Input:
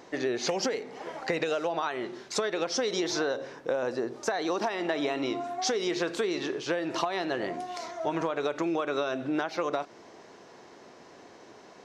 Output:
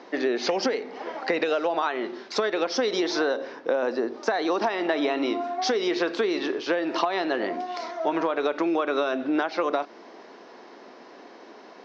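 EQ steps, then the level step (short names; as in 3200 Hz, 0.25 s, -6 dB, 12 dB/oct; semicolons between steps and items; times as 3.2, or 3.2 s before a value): Chebyshev band-pass 230–5300 Hz, order 3; air absorption 62 m; +5.5 dB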